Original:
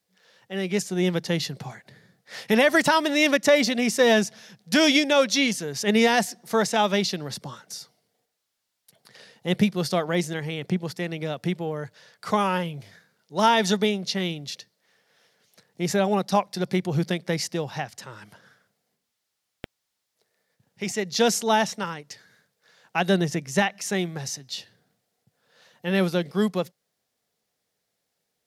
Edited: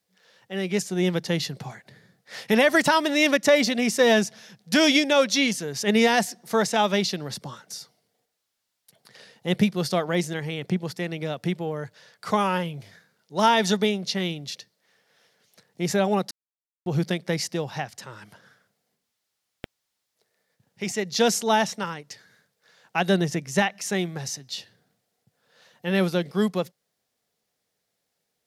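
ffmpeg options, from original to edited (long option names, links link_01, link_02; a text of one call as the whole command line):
ffmpeg -i in.wav -filter_complex "[0:a]asplit=3[link_01][link_02][link_03];[link_01]atrim=end=16.31,asetpts=PTS-STARTPTS,afade=type=out:start_time=16.306:duration=0.004:curve=hsin[link_04];[link_02]atrim=start=16.31:end=16.86,asetpts=PTS-STARTPTS,volume=0[link_05];[link_03]atrim=start=16.86,asetpts=PTS-STARTPTS,afade=type=in:duration=0.004:curve=hsin[link_06];[link_04][link_05][link_06]concat=n=3:v=0:a=1" out.wav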